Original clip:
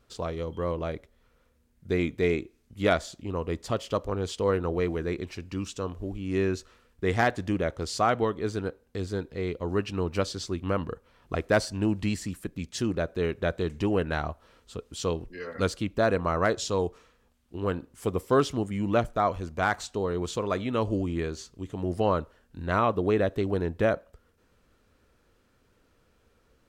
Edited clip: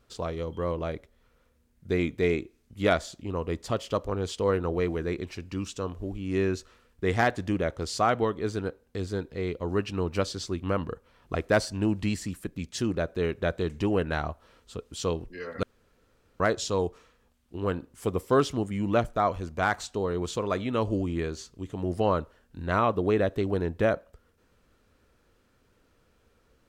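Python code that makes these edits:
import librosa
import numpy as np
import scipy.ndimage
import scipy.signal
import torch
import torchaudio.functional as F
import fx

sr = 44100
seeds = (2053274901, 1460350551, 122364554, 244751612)

y = fx.edit(x, sr, fx.room_tone_fill(start_s=15.63, length_s=0.77), tone=tone)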